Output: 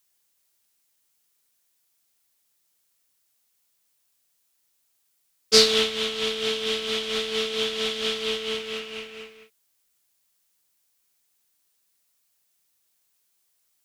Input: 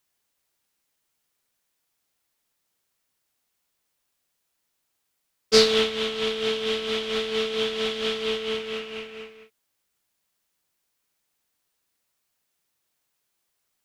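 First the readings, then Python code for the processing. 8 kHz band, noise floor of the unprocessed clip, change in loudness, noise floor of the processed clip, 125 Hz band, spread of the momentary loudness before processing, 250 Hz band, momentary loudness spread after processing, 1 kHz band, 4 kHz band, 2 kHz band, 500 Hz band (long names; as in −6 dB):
+5.5 dB, −77 dBFS, +0.5 dB, −71 dBFS, −2.5 dB, 15 LU, −2.5 dB, 16 LU, −1.5 dB, +3.0 dB, +0.5 dB, −2.5 dB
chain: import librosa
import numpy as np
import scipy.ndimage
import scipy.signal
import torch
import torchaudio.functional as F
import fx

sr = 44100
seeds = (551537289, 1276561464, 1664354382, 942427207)

y = fx.high_shelf(x, sr, hz=3500.0, db=10.0)
y = y * 10.0 ** (-2.5 / 20.0)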